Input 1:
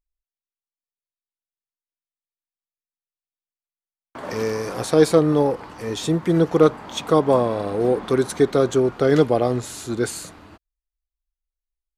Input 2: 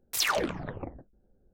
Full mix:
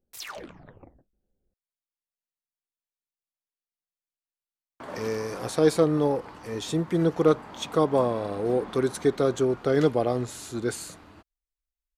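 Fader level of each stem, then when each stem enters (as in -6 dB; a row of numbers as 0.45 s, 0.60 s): -5.5 dB, -12.0 dB; 0.65 s, 0.00 s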